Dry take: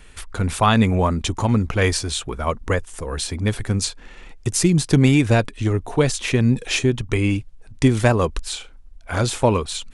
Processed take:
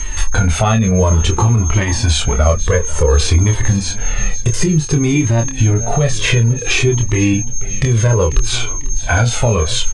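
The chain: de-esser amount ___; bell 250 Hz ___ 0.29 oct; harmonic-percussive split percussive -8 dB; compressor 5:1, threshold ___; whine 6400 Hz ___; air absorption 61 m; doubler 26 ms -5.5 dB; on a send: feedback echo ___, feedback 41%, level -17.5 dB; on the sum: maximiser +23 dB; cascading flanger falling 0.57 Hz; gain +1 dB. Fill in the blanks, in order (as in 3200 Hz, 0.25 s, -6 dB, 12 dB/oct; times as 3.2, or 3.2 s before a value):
45%, -3.5 dB, -30 dBFS, -40 dBFS, 0.495 s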